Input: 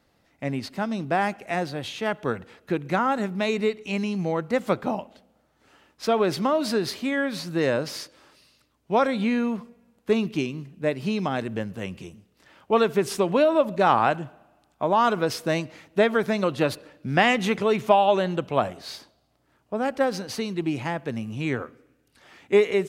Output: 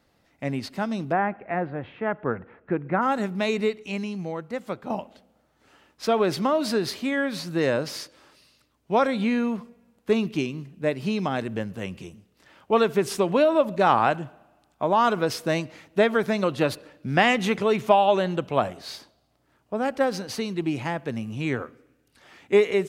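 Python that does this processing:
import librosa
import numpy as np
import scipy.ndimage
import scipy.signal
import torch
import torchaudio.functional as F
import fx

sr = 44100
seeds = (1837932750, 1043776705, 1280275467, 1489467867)

y = fx.lowpass(x, sr, hz=2000.0, slope=24, at=(1.11, 3.01), fade=0.02)
y = fx.edit(y, sr, fx.fade_out_to(start_s=3.62, length_s=1.28, curve='qua', floor_db=-8.5), tone=tone)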